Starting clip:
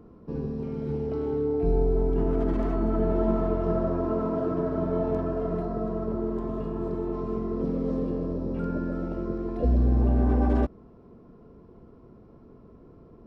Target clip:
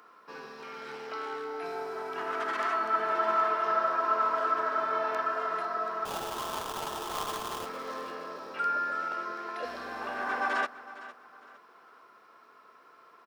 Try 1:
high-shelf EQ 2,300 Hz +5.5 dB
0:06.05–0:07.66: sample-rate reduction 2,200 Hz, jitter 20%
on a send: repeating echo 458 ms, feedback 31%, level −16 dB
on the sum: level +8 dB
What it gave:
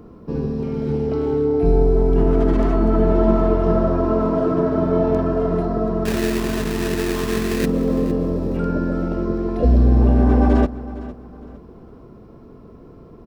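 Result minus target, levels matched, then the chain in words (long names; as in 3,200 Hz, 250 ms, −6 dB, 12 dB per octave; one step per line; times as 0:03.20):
1,000 Hz band −12.0 dB
high-pass with resonance 1,400 Hz, resonance Q 1.9
high-shelf EQ 2,300 Hz +5.5 dB
0:06.05–0:07.66: sample-rate reduction 2,200 Hz, jitter 20%
on a send: repeating echo 458 ms, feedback 31%, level −16 dB
on the sum: level +8 dB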